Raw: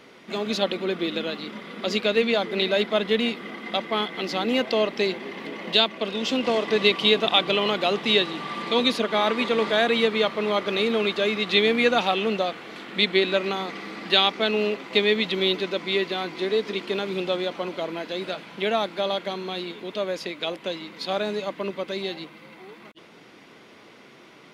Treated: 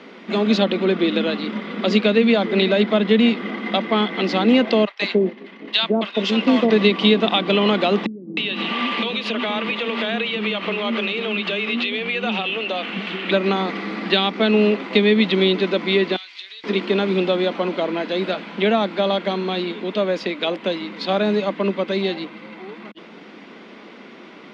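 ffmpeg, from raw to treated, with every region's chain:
-filter_complex "[0:a]asettb=1/sr,asplit=3[a][b][c];[a]atrim=end=4.854[d];[b]atrim=start=4.85:end=6.7,asetpts=PTS-STARTPTS,afade=t=in:d=0.004:c=qsin,afade=t=out:st=1.846:d=0.004:c=qsin,agate=range=-33dB:threshold=-27dB:ratio=3:release=100:detection=peak,acrossover=split=780[e][f];[e]adelay=150[g];[g][f]amix=inputs=2:normalize=0,atrim=end_sample=81585[h];[c]atrim=start=6.696[i];[d][h]acrossfade=d=0.004:c1=hsin:c2=qsin[j];[j][i]acrossfade=d=0.004:c1=qsin:c2=hsin,asettb=1/sr,asplit=3[k][l][m];[k]atrim=end=8.064[n];[l]atrim=start=8.06:end=13.31,asetpts=PTS-STARTPTS,afade=t=in:d=0.004:c=qsin,afade=t=out:st=5.246:d=0.004:c=qsin,equalizer=f=2.8k:t=o:w=0.56:g=11.5,acompressor=threshold=-25dB:ratio=16:attack=3.2:release=140:knee=1:detection=peak,acrossover=split=340[o][p];[p]adelay=310[q];[o][q]amix=inputs=2:normalize=0,atrim=end_sample=231525[r];[m]atrim=start=13.306[s];[n][r]acrossfade=d=0.004:c1=hsin:c2=qsin[t];[t][s]acrossfade=d=0.004:c1=qsin:c2=hsin,asettb=1/sr,asplit=3[u][v][w];[u]atrim=end=16.164[x];[v]atrim=start=16.16:end=16.64,asetpts=PTS-STARTPTS,afade=t=in:d=0.004:c=qsin,afade=t=out:st=0.476:d=0.004:c=qsin,acompressor=threshold=-29dB:ratio=3:attack=3.2:release=140:knee=1:detection=peak,asuperpass=centerf=5600:order=4:qfactor=0.75[y];[w]atrim=start=16.636[z];[x][y]acrossfade=d=0.004:c1=hsin:c2=qsin[aa];[aa][z]acrossfade=d=0.004:c1=qsin:c2=hsin,lowpass=4k,lowshelf=f=160:t=q:w=3:g=-7,acrossover=split=300[ab][ac];[ac]acompressor=threshold=-23dB:ratio=4[ad];[ab][ad]amix=inputs=2:normalize=0,volume=7dB"

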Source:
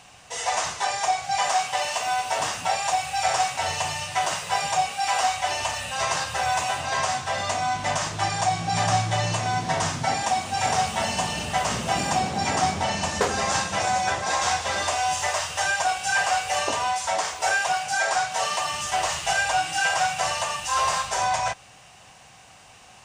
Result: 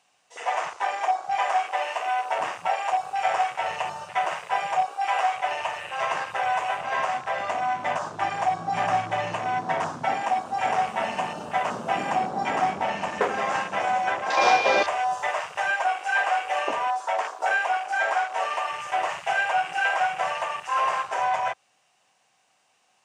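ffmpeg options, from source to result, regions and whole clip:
-filter_complex "[0:a]asettb=1/sr,asplit=3[a][b][c];[a]atrim=end=14.374[d];[b]atrim=start=14.37:end=14.83,asetpts=PTS-STARTPTS,afade=t=in:d=0.004:c=qsin,afade=t=out:st=0.456:d=0.004:c=qsin,equalizer=f=410:w=0.71:g=13.5,aeval=exprs='val(0)+0.0562*sin(2*PI*2400*n/s)':c=same[e];[c]atrim=start=14.826[f];[d][e]acrossfade=d=0.004:c1=hsin:c2=qsin[g];[g][f]acrossfade=d=0.004:c1=qsin:c2=hsin,afwtdn=0.0316,highpass=250"

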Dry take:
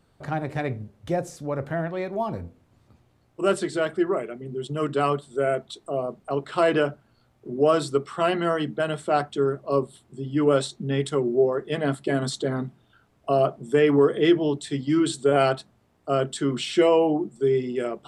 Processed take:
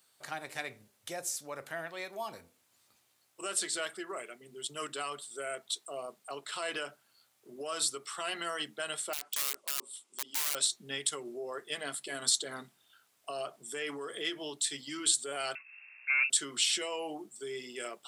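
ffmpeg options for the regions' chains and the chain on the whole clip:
-filter_complex "[0:a]asettb=1/sr,asplit=3[a][b][c];[a]atrim=end=9.134[d];[b]atrim=start=9.13:end=10.55,asetpts=PTS-STARTPTS,afade=t=in:d=0.004:c=qsin,afade=t=out:st=1.416:d=0.004:c=qsin,acompressor=threshold=-29dB:ratio=10:attack=3.2:release=140:knee=1:detection=peak,highpass=f=230:w=0.5412,highpass=f=230:w=1.3066,equalizer=f=690:t=q:w=4:g=-6,equalizer=f=1.7k:t=q:w=4:g=-9,equalizer=f=4.2k:t=q:w=4:g=-4,lowpass=f=9.5k:w=0.5412,lowpass=f=9.5k:w=1.3066,aeval=exprs='(mod(33.5*val(0)+1,2)-1)/33.5':c=same[e];[c]atrim=start=10.546[f];[d][e]acrossfade=d=0.004:c1=hsin:c2=qsin[g];[g][f]acrossfade=d=0.004:c1=qsin:c2=hsin,asettb=1/sr,asplit=3[h][i][j];[h]atrim=end=15.554[k];[i]atrim=start=15.55:end=16.3,asetpts=PTS-STARTPTS,afade=t=in:d=0.004:c=qsin,afade=t=out:st=0.746:d=0.004:c=qsin,acompressor=mode=upward:threshold=-40dB:ratio=2.5:attack=3.2:release=140:knee=2.83:detection=peak,asoftclip=type=hard:threshold=-20.5dB,lowpass=f=2.4k:t=q:w=0.5098,lowpass=f=2.4k:t=q:w=0.6013,lowpass=f=2.4k:t=q:w=0.9,lowpass=f=2.4k:t=q:w=2.563,afreqshift=-2800[l];[j]atrim=start=16.296[m];[k][l]acrossfade=d=0.004:c1=hsin:c2=qsin[n];[n][m]acrossfade=d=0.004:c1=qsin:c2=hsin,alimiter=limit=-17dB:level=0:latency=1:release=106,aderivative,volume=8.5dB"

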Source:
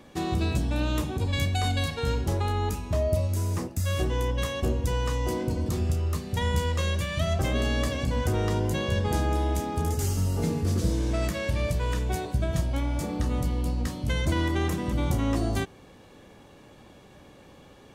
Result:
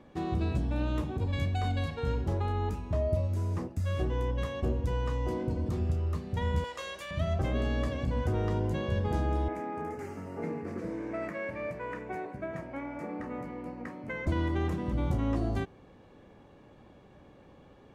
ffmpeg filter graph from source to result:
-filter_complex "[0:a]asettb=1/sr,asplit=3[a][b][c];[a]atrim=end=6.644[d];[b]atrim=start=6.64:end=7.11,asetpts=PTS-STARTPTS,afade=t=in:d=0.004:c=qsin,afade=t=out:st=0.466:d=0.004:c=qsin,highpass=610,highshelf=f=4.6k:g=9,aeval=exprs='val(0)+0.00141*(sin(2*PI*60*n/s)+sin(2*PI*2*60*n/s)/2+sin(2*PI*3*60*n/s)/3+sin(2*PI*4*60*n/s)/4+sin(2*PI*5*60*n/s)/5)':c=same[e];[c]atrim=start=7.106[f];[d][e]acrossfade=d=0.004:c1=hsin:c2=qsin[g];[g][f]acrossfade=d=0.004:c1=qsin:c2=hsin,asettb=1/sr,asplit=3[h][i][j];[h]atrim=end=9.484[k];[i]atrim=start=9.48:end=14.27,asetpts=PTS-STARTPTS,afade=t=in:d=0.004:c=qsin,afade=t=out:st=4.786:d=0.004:c=qsin,highpass=260,highshelf=f=2.7k:t=q:w=3:g=-7.5[l];[j]atrim=start=14.266[m];[k][l]acrossfade=d=0.004:c1=hsin:c2=qsin[n];[n][m]acrossfade=d=0.004:c1=qsin:c2=hsin,lowpass=f=4k:p=1,highshelf=f=2.5k:g=-8.5,volume=-3.5dB"

